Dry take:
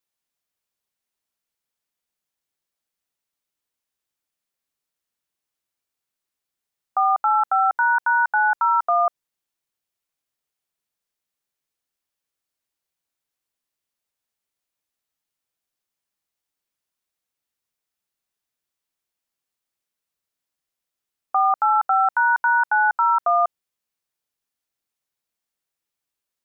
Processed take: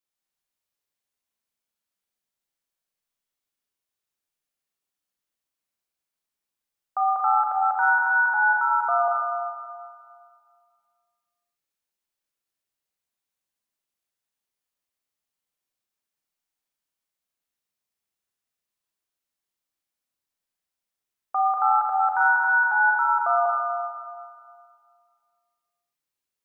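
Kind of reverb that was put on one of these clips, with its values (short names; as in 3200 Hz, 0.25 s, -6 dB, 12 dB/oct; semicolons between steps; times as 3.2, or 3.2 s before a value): Schroeder reverb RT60 2.1 s, combs from 30 ms, DRR -1.5 dB; gain -6 dB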